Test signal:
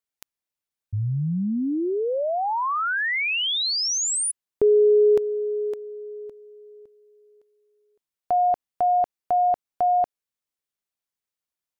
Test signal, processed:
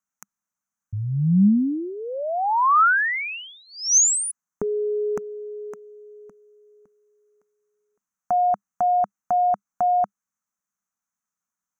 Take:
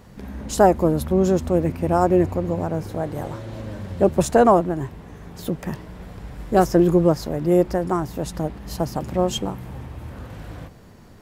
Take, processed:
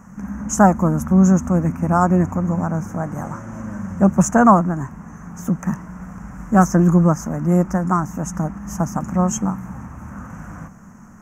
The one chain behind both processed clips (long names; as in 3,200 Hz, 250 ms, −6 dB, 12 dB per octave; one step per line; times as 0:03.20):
drawn EQ curve 120 Hz 0 dB, 200 Hz +13 dB, 400 Hz −7 dB, 1,300 Hz +12 dB, 2,700 Hz −6 dB, 4,100 Hz −28 dB, 6,200 Hz +13 dB, 9,200 Hz −1 dB
level −2 dB